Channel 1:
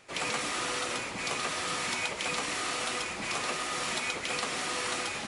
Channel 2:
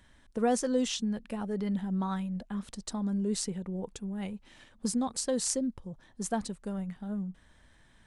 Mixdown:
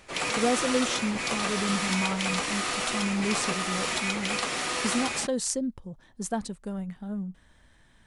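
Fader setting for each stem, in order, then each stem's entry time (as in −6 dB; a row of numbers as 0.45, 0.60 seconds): +3.0, +1.5 decibels; 0.00, 0.00 seconds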